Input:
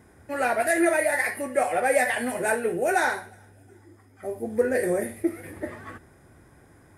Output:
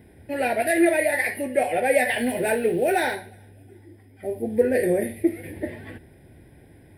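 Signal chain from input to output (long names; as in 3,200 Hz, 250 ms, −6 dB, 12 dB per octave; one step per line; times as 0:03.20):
0:02.09–0:03.15: mu-law and A-law mismatch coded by mu
phaser with its sweep stopped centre 2,900 Hz, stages 4
level +5 dB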